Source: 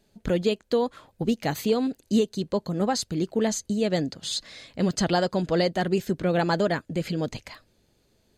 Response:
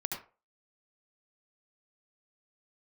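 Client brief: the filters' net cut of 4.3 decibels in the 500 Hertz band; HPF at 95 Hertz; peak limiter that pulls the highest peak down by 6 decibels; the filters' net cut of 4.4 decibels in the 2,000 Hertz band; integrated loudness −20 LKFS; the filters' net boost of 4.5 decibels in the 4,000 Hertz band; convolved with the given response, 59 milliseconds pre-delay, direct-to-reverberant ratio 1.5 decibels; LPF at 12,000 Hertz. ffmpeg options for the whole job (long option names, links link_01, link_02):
-filter_complex "[0:a]highpass=95,lowpass=12000,equalizer=frequency=500:width_type=o:gain=-5,equalizer=frequency=2000:width_type=o:gain=-7,equalizer=frequency=4000:width_type=o:gain=7,alimiter=limit=-17.5dB:level=0:latency=1,asplit=2[link_01][link_02];[1:a]atrim=start_sample=2205,adelay=59[link_03];[link_02][link_03]afir=irnorm=-1:irlink=0,volume=-4dB[link_04];[link_01][link_04]amix=inputs=2:normalize=0,volume=6.5dB"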